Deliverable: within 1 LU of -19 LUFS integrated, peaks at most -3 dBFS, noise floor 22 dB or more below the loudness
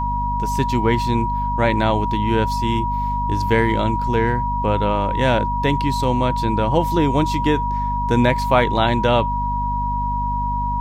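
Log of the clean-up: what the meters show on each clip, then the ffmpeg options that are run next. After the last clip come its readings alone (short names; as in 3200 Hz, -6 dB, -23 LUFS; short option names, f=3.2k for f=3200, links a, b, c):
hum 50 Hz; harmonics up to 250 Hz; hum level -22 dBFS; steady tone 960 Hz; tone level -21 dBFS; loudness -19.5 LUFS; peak -2.0 dBFS; loudness target -19.0 LUFS
-> -af "bandreject=f=50:t=h:w=4,bandreject=f=100:t=h:w=4,bandreject=f=150:t=h:w=4,bandreject=f=200:t=h:w=4,bandreject=f=250:t=h:w=4"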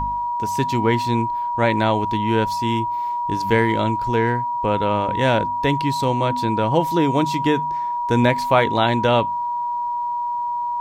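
hum none; steady tone 960 Hz; tone level -21 dBFS
-> -af "bandreject=f=960:w=30"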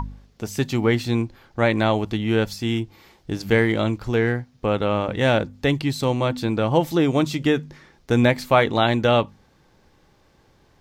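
steady tone none; loudness -21.5 LUFS; peak -2.5 dBFS; loudness target -19.0 LUFS
-> -af "volume=2.5dB,alimiter=limit=-3dB:level=0:latency=1"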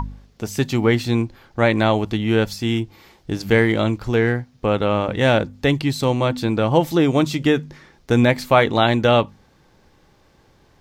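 loudness -19.0 LUFS; peak -3.0 dBFS; noise floor -56 dBFS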